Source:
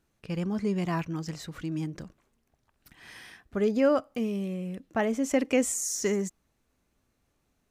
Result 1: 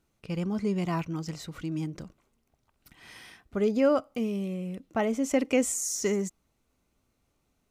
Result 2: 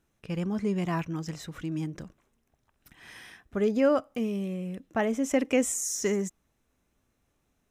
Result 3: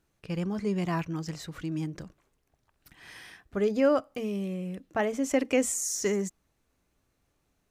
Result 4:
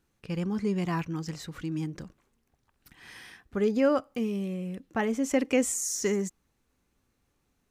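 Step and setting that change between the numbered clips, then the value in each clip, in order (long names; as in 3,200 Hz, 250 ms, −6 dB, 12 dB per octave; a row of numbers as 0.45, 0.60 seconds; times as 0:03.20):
notch filter, centre frequency: 1,700, 4,500, 230, 640 Hertz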